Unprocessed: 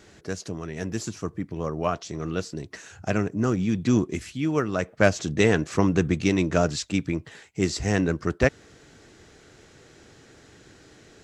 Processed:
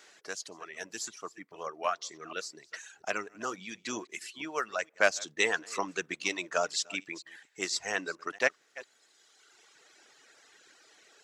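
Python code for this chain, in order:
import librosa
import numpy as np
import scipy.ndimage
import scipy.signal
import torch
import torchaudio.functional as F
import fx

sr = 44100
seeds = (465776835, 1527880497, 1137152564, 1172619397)

y = fx.reverse_delay(x, sr, ms=233, wet_db=-13.0)
y = fx.dereverb_blind(y, sr, rt60_s=1.8)
y = scipy.signal.sosfilt(scipy.signal.bessel(2, 930.0, 'highpass', norm='mag', fs=sr, output='sos'), y)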